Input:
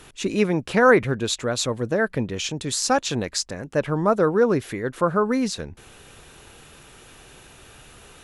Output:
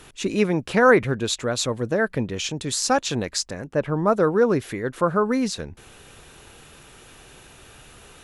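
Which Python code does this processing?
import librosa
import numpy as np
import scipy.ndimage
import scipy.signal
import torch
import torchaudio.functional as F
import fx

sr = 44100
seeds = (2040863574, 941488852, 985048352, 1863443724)

y = fx.high_shelf(x, sr, hz=2600.0, db=-8.5, at=(3.67, 4.07))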